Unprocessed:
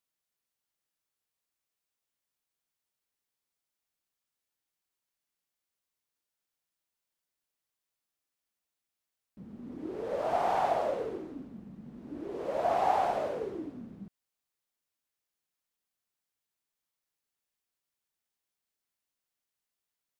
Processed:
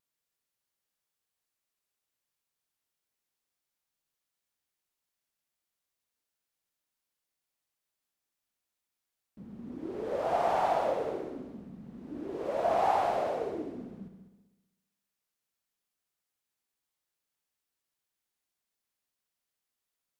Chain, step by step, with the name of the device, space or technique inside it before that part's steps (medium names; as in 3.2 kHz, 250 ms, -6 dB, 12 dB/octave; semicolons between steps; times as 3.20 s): multi-head tape echo (multi-head delay 65 ms, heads all three, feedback 42%, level -13 dB; wow and flutter)